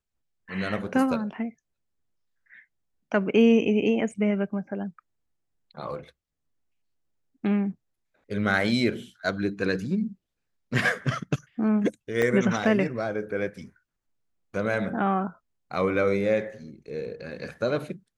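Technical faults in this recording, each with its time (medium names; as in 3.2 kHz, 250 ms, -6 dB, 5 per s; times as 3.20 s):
12.22 s: dropout 2.3 ms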